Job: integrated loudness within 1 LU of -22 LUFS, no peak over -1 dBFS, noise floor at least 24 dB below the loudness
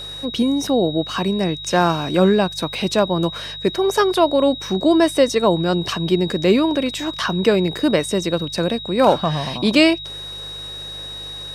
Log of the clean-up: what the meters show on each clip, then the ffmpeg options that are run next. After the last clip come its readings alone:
hum 50 Hz; harmonics up to 150 Hz; hum level -40 dBFS; steady tone 3800 Hz; tone level -30 dBFS; loudness -18.5 LUFS; peak -1.5 dBFS; loudness target -22.0 LUFS
-> -af "bandreject=f=50:t=h:w=4,bandreject=f=100:t=h:w=4,bandreject=f=150:t=h:w=4"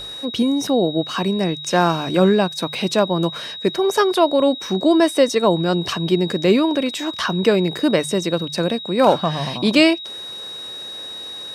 hum none; steady tone 3800 Hz; tone level -30 dBFS
-> -af "bandreject=f=3.8k:w=30"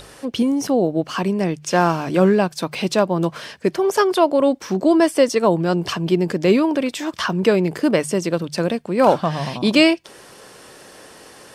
steady tone none; loudness -19.0 LUFS; peak -2.0 dBFS; loudness target -22.0 LUFS
-> -af "volume=-3dB"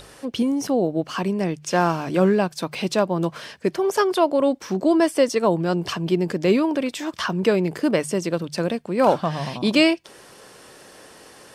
loudness -22.0 LUFS; peak -5.0 dBFS; noise floor -47 dBFS

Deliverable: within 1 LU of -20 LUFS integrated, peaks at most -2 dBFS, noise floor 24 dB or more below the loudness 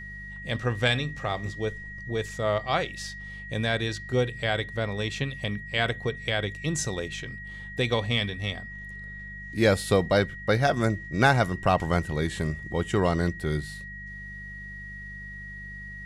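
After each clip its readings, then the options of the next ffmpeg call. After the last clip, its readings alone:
hum 50 Hz; harmonics up to 200 Hz; hum level -41 dBFS; steady tone 1900 Hz; tone level -39 dBFS; loudness -27.5 LUFS; peak -7.0 dBFS; loudness target -20.0 LUFS
-> -af "bandreject=f=50:t=h:w=4,bandreject=f=100:t=h:w=4,bandreject=f=150:t=h:w=4,bandreject=f=200:t=h:w=4"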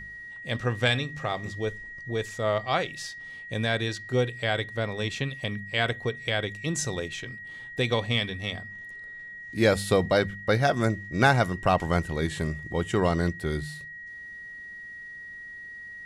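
hum none; steady tone 1900 Hz; tone level -39 dBFS
-> -af "bandreject=f=1.9k:w=30"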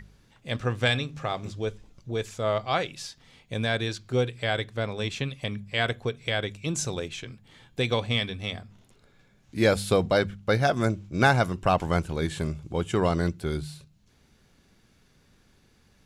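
steady tone none; loudness -27.5 LUFS; peak -7.0 dBFS; loudness target -20.0 LUFS
-> -af "volume=7.5dB,alimiter=limit=-2dB:level=0:latency=1"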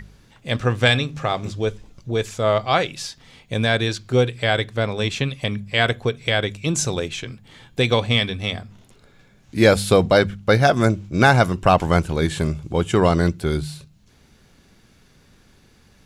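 loudness -20.0 LUFS; peak -2.0 dBFS; noise floor -54 dBFS

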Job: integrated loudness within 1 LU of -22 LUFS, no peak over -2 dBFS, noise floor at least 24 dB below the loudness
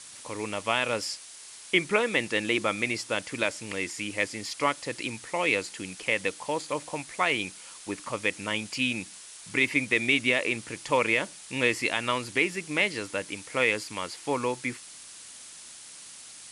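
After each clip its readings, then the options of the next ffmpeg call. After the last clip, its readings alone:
noise floor -47 dBFS; noise floor target -52 dBFS; loudness -28.0 LUFS; peak -10.0 dBFS; loudness target -22.0 LUFS
-> -af "afftdn=nr=6:nf=-47"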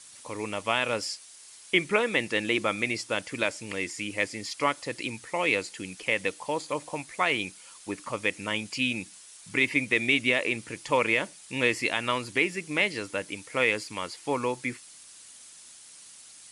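noise floor -50 dBFS; noise floor target -52 dBFS
-> -af "afftdn=nr=6:nf=-50"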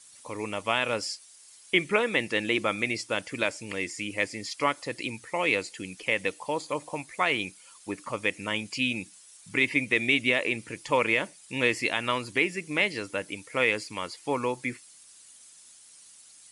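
noise floor -53 dBFS; loudness -28.0 LUFS; peak -10.0 dBFS; loudness target -22.0 LUFS
-> -af "volume=6dB"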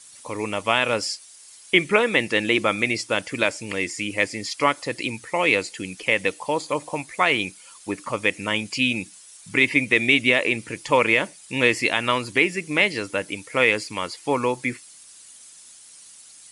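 loudness -22.0 LUFS; peak -4.0 dBFS; noise floor -47 dBFS

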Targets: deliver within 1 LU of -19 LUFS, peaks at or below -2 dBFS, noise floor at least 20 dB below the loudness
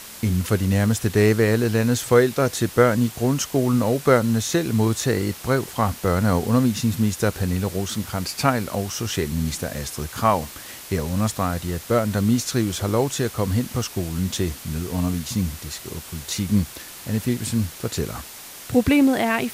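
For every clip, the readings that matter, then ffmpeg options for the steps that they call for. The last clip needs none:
noise floor -39 dBFS; noise floor target -42 dBFS; loudness -22.0 LUFS; peak -4.0 dBFS; loudness target -19.0 LUFS
-> -af "afftdn=nr=6:nf=-39"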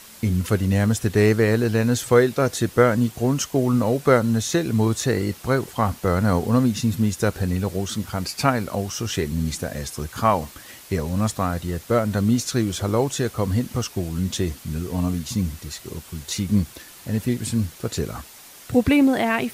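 noise floor -44 dBFS; loudness -22.5 LUFS; peak -4.0 dBFS; loudness target -19.0 LUFS
-> -af "volume=3.5dB,alimiter=limit=-2dB:level=0:latency=1"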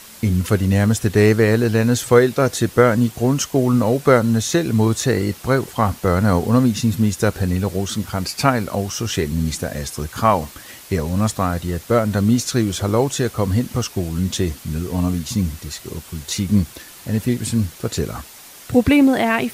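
loudness -19.0 LUFS; peak -2.0 dBFS; noise floor -41 dBFS

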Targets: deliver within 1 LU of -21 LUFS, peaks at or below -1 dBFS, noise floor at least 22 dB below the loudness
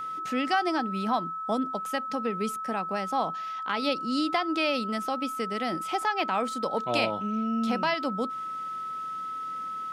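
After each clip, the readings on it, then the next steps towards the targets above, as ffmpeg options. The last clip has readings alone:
steady tone 1300 Hz; tone level -32 dBFS; loudness -29.0 LUFS; peak -13.5 dBFS; loudness target -21.0 LUFS
-> -af "bandreject=f=1.3k:w=30"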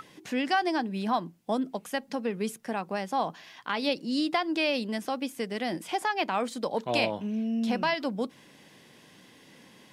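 steady tone none; loudness -30.0 LUFS; peak -13.0 dBFS; loudness target -21.0 LUFS
-> -af "volume=9dB"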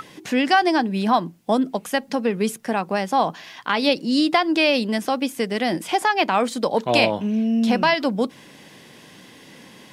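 loudness -21.0 LUFS; peak -4.0 dBFS; noise floor -47 dBFS

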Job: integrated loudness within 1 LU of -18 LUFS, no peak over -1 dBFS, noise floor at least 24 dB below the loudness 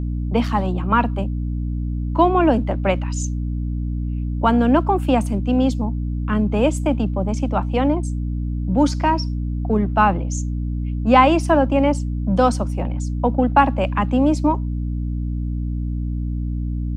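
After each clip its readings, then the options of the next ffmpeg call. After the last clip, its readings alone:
hum 60 Hz; harmonics up to 300 Hz; hum level -21 dBFS; loudness -20.5 LUFS; peak -1.0 dBFS; loudness target -18.0 LUFS
-> -af "bandreject=f=60:t=h:w=6,bandreject=f=120:t=h:w=6,bandreject=f=180:t=h:w=6,bandreject=f=240:t=h:w=6,bandreject=f=300:t=h:w=6"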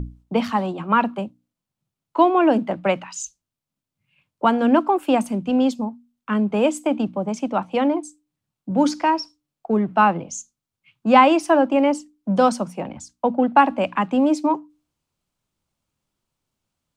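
hum none; loudness -20.5 LUFS; peak -1.0 dBFS; loudness target -18.0 LUFS
-> -af "volume=2.5dB,alimiter=limit=-1dB:level=0:latency=1"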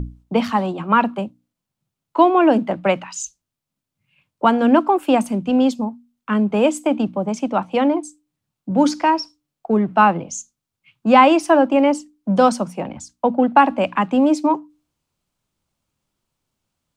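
loudness -18.0 LUFS; peak -1.0 dBFS; noise floor -83 dBFS

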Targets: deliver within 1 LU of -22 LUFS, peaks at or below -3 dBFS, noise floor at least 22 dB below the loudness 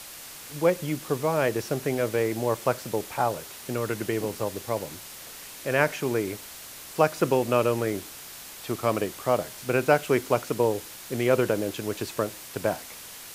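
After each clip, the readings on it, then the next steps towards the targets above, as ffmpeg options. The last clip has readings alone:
noise floor -43 dBFS; noise floor target -49 dBFS; loudness -27.0 LUFS; peak -5.5 dBFS; loudness target -22.0 LUFS
-> -af "afftdn=nr=6:nf=-43"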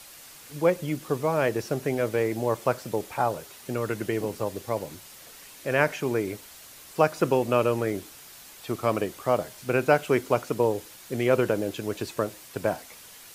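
noise floor -48 dBFS; noise floor target -49 dBFS
-> -af "afftdn=nr=6:nf=-48"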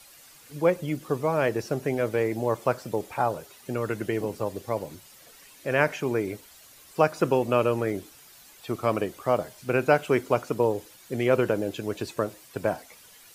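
noise floor -52 dBFS; loudness -27.0 LUFS; peak -5.5 dBFS; loudness target -22.0 LUFS
-> -af "volume=5dB,alimiter=limit=-3dB:level=0:latency=1"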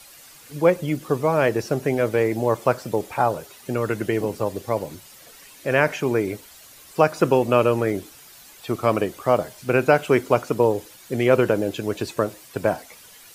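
loudness -22.5 LUFS; peak -3.0 dBFS; noise floor -47 dBFS

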